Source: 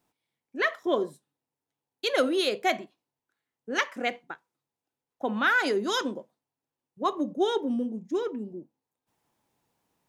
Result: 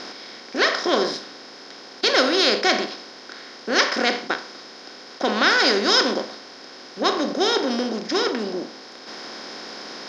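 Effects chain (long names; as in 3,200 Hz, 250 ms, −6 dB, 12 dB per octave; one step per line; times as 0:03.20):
compressor on every frequency bin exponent 0.4
low-pass with resonance 5,200 Hz, resonance Q 8.6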